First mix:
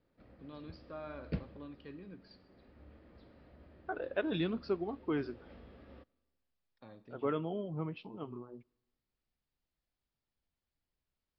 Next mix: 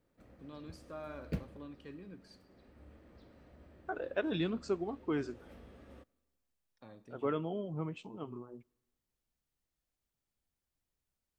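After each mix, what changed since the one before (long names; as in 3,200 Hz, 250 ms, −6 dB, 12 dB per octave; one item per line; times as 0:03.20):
master: remove Butterworth low-pass 5,200 Hz 96 dB per octave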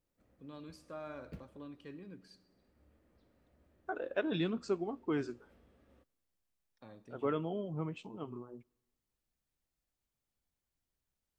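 background −11.5 dB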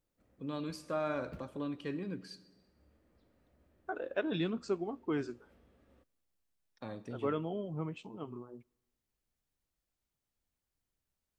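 first voice +10.5 dB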